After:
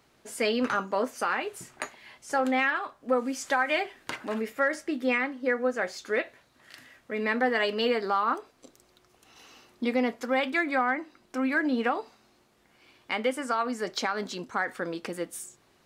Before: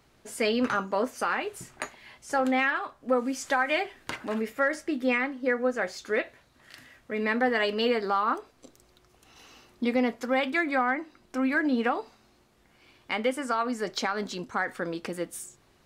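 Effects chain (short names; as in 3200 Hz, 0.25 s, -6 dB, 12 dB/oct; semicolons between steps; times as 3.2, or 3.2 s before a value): low shelf 94 Hz -11.5 dB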